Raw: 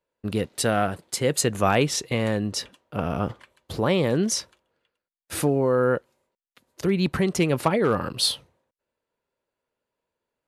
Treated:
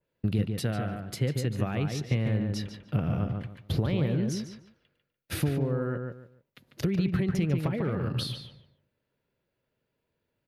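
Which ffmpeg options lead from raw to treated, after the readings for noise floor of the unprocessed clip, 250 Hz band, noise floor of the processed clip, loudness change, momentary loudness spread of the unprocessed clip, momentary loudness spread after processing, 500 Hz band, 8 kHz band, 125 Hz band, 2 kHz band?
under -85 dBFS, -3.5 dB, -82 dBFS, -5.5 dB, 9 LU, 9 LU, -10.5 dB, -15.5 dB, +1.5 dB, -10.0 dB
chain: -filter_complex "[0:a]acompressor=threshold=0.0251:ratio=6,equalizer=f=125:t=o:w=1:g=9,equalizer=f=500:t=o:w=1:g=-3,equalizer=f=1000:t=o:w=1:g=-8,equalizer=f=8000:t=o:w=1:g=-12,asplit=2[s0][s1];[s1]adelay=146,lowpass=f=2600:p=1,volume=0.596,asplit=2[s2][s3];[s3]adelay=146,lowpass=f=2600:p=1,volume=0.25,asplit=2[s4][s5];[s5]adelay=146,lowpass=f=2600:p=1,volume=0.25[s6];[s2][s4][s6]amix=inputs=3:normalize=0[s7];[s0][s7]amix=inputs=2:normalize=0,adynamicequalizer=threshold=0.00141:dfrequency=2900:dqfactor=0.7:tfrequency=2900:tqfactor=0.7:attack=5:release=100:ratio=0.375:range=2:mode=cutabove:tftype=highshelf,volume=1.68"

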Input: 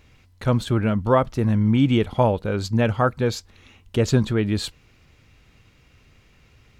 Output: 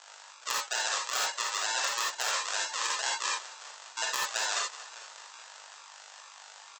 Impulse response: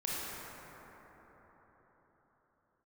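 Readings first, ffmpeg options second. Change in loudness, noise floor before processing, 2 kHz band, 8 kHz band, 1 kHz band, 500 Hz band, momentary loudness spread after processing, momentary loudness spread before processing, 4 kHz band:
-9.0 dB, -57 dBFS, +1.0 dB, +9.5 dB, -6.0 dB, -21.5 dB, 19 LU, 8 LU, +3.0 dB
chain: -filter_complex "[0:a]lowpass=f=2500:t=q:w=0.5098,lowpass=f=2500:t=q:w=0.6013,lowpass=f=2500:t=q:w=0.9,lowpass=f=2500:t=q:w=2.563,afreqshift=-2900,aeval=exprs='val(0)+0.0126*(sin(2*PI*50*n/s)+sin(2*PI*2*50*n/s)/2+sin(2*PI*3*50*n/s)/3+sin(2*PI*4*50*n/s)/4+sin(2*PI*5*50*n/s)/5)':c=same,aecho=1:1:599|1198:0.0668|0.0254,aresample=16000,acrusher=samples=18:mix=1:aa=0.000001:lfo=1:lforange=10.8:lforate=2.2,aresample=44100,highpass=f=850:w=0.5412,highpass=f=850:w=1.3066,volume=3.55,asoftclip=hard,volume=0.282,equalizer=f=2200:w=5.7:g=-6.5[s0];[1:a]atrim=start_sample=2205,afade=t=out:st=0.14:d=0.01,atrim=end_sample=6615[s1];[s0][s1]afir=irnorm=-1:irlink=0,areverse,acompressor=threshold=0.0224:ratio=6,areverse,aemphasis=mode=production:type=50kf,volume=1.33"

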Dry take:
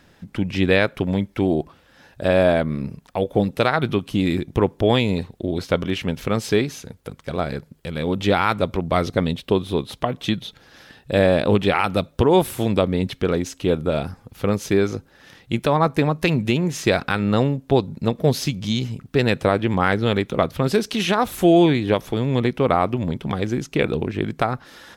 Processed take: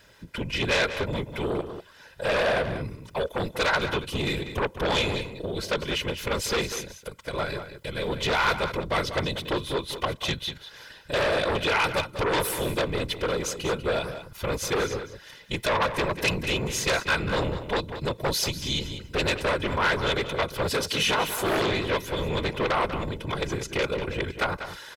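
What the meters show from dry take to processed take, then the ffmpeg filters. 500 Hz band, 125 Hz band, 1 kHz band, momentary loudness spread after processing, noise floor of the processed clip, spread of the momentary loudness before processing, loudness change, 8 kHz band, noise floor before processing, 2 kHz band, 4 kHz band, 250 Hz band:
-7.0 dB, -9.5 dB, -4.0 dB, 9 LU, -50 dBFS, 9 LU, -6.0 dB, +3.0 dB, -55 dBFS, 0.0 dB, +1.0 dB, -12.0 dB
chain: -filter_complex "[0:a]afftfilt=real='hypot(re,im)*cos(2*PI*random(0))':imag='hypot(re,im)*sin(2*PI*random(1))':win_size=512:overlap=0.75,aecho=1:1:2:0.47,asplit=2[s0][s1];[s1]aeval=exprs='0.447*sin(PI/2*5.01*val(0)/0.447)':c=same,volume=0.316[s2];[s0][s2]amix=inputs=2:normalize=0,tiltshelf=f=760:g=-4.5,asplit=2[s3][s4];[s4]adelay=192.4,volume=0.316,highshelf=f=4000:g=-4.33[s5];[s3][s5]amix=inputs=2:normalize=0,volume=0.422"

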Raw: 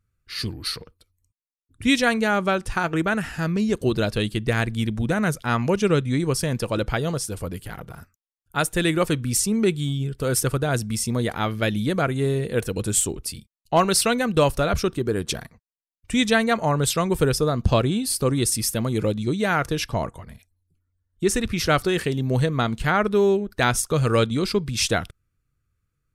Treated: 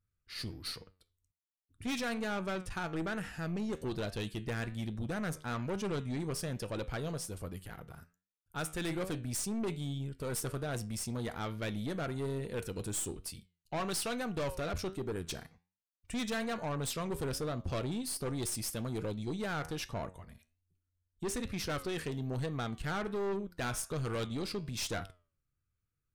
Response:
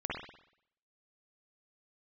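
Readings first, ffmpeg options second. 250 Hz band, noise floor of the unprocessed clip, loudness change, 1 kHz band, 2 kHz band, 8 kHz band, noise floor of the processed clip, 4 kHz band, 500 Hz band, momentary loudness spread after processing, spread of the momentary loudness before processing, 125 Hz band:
-14.0 dB, -78 dBFS, -14.5 dB, -15.5 dB, -15.5 dB, -14.0 dB, under -85 dBFS, -14.0 dB, -15.0 dB, 7 LU, 8 LU, -14.0 dB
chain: -af "flanger=delay=9.8:depth=3.4:regen=81:speed=1.2:shape=triangular,aeval=exprs='(tanh(20*val(0)+0.35)-tanh(0.35))/20':c=same,volume=0.531"

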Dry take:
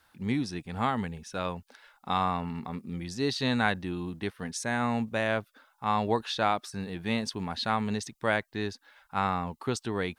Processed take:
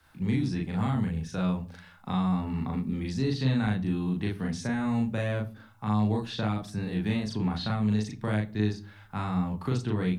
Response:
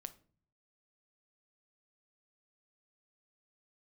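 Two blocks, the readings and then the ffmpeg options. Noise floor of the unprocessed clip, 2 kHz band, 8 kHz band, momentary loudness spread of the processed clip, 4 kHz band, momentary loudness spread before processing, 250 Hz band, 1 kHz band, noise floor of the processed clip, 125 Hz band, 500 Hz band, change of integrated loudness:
-68 dBFS, -6.0 dB, -6.5 dB, 6 LU, -4.5 dB, 9 LU, +4.5 dB, -7.0 dB, -53 dBFS, +8.0 dB, -3.0 dB, +1.5 dB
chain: -filter_complex "[0:a]bass=f=250:g=9,treble=f=4000:g=-2,acrossover=split=100|300|4800[s0][s1][s2][s3];[s0]acompressor=threshold=0.00891:ratio=4[s4];[s1]acompressor=threshold=0.0316:ratio=4[s5];[s2]acompressor=threshold=0.0141:ratio=4[s6];[s3]acompressor=threshold=0.002:ratio=4[s7];[s4][s5][s6][s7]amix=inputs=4:normalize=0,asplit=2[s8][s9];[1:a]atrim=start_sample=2205,adelay=38[s10];[s9][s10]afir=irnorm=-1:irlink=0,volume=1.68[s11];[s8][s11]amix=inputs=2:normalize=0"

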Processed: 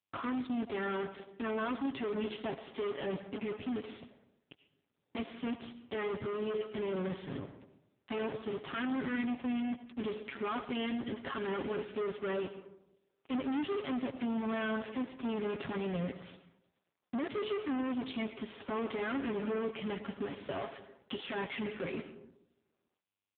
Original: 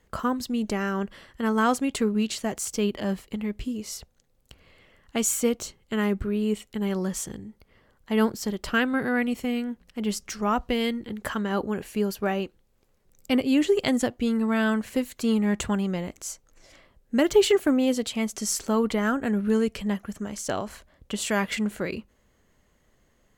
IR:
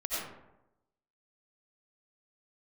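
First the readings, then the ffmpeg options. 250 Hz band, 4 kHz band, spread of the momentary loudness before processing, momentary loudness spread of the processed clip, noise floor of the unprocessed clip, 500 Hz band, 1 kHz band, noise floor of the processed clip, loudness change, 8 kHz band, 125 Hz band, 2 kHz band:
-11.5 dB, -12.0 dB, 10 LU, 8 LU, -65 dBFS, -9.5 dB, -10.0 dB, -83 dBFS, -11.0 dB, under -40 dB, -11.0 dB, -10.5 dB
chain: -filter_complex "[0:a]aecho=1:1:7.3:0.74,bandreject=f=425.6:t=h:w=4,bandreject=f=851.2:t=h:w=4,bandreject=f=1276.8:t=h:w=4,bandreject=f=1702.4:t=h:w=4,bandreject=f=2128:t=h:w=4,bandreject=f=2553.6:t=h:w=4,bandreject=f=2979.2:t=h:w=4,bandreject=f=3404.8:t=h:w=4,bandreject=f=3830.4:t=h:w=4,bandreject=f=4256:t=h:w=4,bandreject=f=4681.6:t=h:w=4,bandreject=f=5107.2:t=h:w=4,bandreject=f=5532.8:t=h:w=4,bandreject=f=5958.4:t=h:w=4,bandreject=f=6384:t=h:w=4,bandreject=f=6809.6:t=h:w=4,bandreject=f=7235.2:t=h:w=4,bandreject=f=7660.8:t=h:w=4,bandreject=f=8086.4:t=h:w=4,bandreject=f=8512:t=h:w=4,bandreject=f=8937.6:t=h:w=4,bandreject=f=9363.2:t=h:w=4,bandreject=f=9788.8:t=h:w=4,bandreject=f=10214.4:t=h:w=4,bandreject=f=10640:t=h:w=4,bandreject=f=11065.6:t=h:w=4,bandreject=f=11491.2:t=h:w=4,bandreject=f=11916.8:t=h:w=4,asplit=2[s0][s1];[s1]acompressor=threshold=0.0355:ratio=16,volume=1.26[s2];[s0][s2]amix=inputs=2:normalize=0,asoftclip=type=tanh:threshold=0.0891,acrusher=bits=4:mix=0:aa=0.5,asoftclip=type=hard:threshold=0.0355,asplit=2[s3][s4];[1:a]atrim=start_sample=2205,highshelf=f=5200:g=4.5[s5];[s4][s5]afir=irnorm=-1:irlink=0,volume=0.2[s6];[s3][s6]amix=inputs=2:normalize=0,volume=0.596" -ar 8000 -c:a libopencore_amrnb -b:a 5900

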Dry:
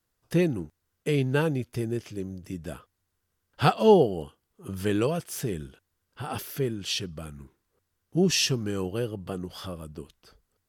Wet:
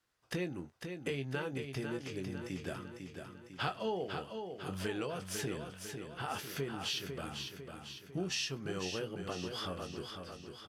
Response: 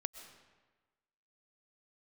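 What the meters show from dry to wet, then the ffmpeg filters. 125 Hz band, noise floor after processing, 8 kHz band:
-12.5 dB, -56 dBFS, -9.5 dB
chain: -filter_complex "[0:a]highpass=f=1400:p=1,aemphasis=mode=reproduction:type=bsi,acompressor=threshold=0.00794:ratio=4,asplit=2[s0][s1];[s1]adelay=22,volume=0.335[s2];[s0][s2]amix=inputs=2:normalize=0,aecho=1:1:500|1000|1500|2000|2500|3000|3500:0.473|0.251|0.133|0.0704|0.0373|0.0198|0.0105,volume=1.88"

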